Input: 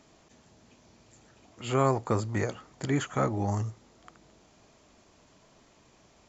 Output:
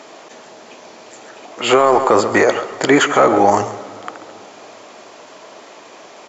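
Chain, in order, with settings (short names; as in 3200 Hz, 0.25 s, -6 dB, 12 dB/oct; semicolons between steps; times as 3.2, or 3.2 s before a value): Chebyshev high-pass 480 Hz, order 2; high shelf 5700 Hz -10 dB; in parallel at -7.5 dB: soft clip -27.5 dBFS, distortion -8 dB; on the sum: echo 0.135 s -15 dB; on a send at -18 dB: reverb RT60 3.1 s, pre-delay 12 ms; on the sum: maximiser +22 dB; gain -1 dB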